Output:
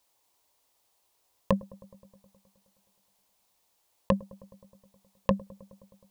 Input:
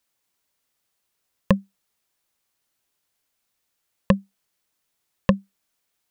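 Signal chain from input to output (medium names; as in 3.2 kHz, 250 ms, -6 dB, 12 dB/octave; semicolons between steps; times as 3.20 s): FFT filter 100 Hz 0 dB, 180 Hz -8 dB, 280 Hz -1 dB, 960 Hz +7 dB, 1.4 kHz -6 dB, 3.9 kHz 0 dB; compressor with a negative ratio -19 dBFS, ratio -0.5; feedback echo behind a low-pass 105 ms, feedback 74%, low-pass 710 Hz, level -21 dB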